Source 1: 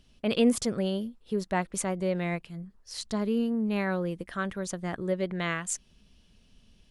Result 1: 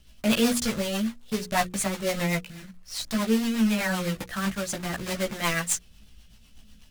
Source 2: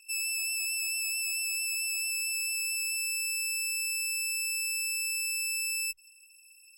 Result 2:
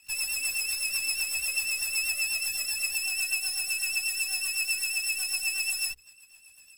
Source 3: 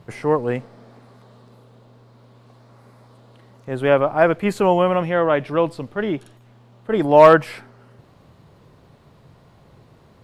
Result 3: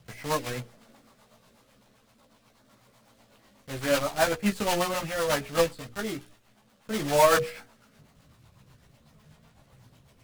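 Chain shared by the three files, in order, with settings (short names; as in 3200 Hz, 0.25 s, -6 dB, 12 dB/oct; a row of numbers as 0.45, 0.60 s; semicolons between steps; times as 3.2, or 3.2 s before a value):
block floating point 3-bit; chorus voices 4, 0.39 Hz, delay 16 ms, depth 2.4 ms; bell 380 Hz -8.5 dB 0.86 oct; rotary speaker horn 8 Hz; notches 60/120/180/240/300/360/420/480 Hz; match loudness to -27 LUFS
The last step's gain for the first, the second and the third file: +10.5, +7.5, -1.5 dB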